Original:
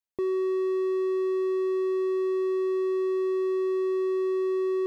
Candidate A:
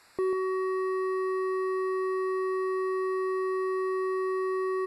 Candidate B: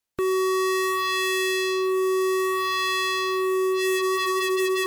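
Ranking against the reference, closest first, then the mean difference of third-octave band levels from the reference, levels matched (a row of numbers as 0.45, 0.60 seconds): A, B; 3.5, 11.0 decibels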